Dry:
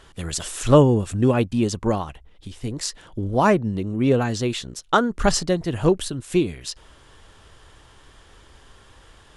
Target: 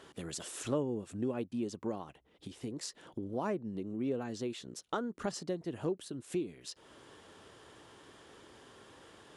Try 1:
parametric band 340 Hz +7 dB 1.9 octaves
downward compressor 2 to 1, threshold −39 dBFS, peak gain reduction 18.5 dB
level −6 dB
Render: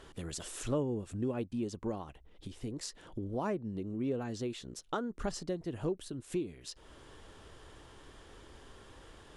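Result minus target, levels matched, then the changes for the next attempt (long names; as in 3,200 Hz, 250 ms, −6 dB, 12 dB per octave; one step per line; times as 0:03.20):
125 Hz band +3.0 dB
add first: high-pass filter 140 Hz 12 dB per octave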